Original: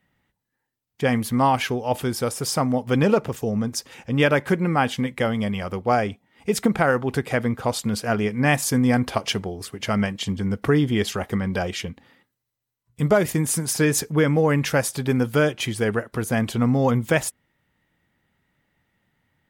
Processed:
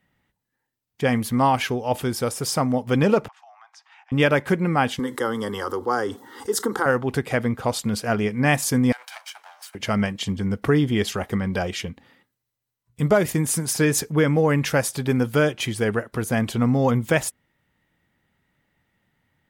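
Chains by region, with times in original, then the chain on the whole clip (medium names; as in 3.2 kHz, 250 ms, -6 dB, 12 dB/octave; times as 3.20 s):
3.28–4.12 s: steep high-pass 720 Hz 96 dB/octave + tape spacing loss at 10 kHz 32 dB + compression 4:1, threshold -45 dBFS
4.99–6.86 s: Bessel high-pass 240 Hz + static phaser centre 650 Hz, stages 6 + level flattener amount 50%
8.92–9.75 s: comb filter that takes the minimum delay 1.3 ms + high-pass 940 Hz 24 dB/octave + compression 5:1, threshold -35 dBFS
whole clip: none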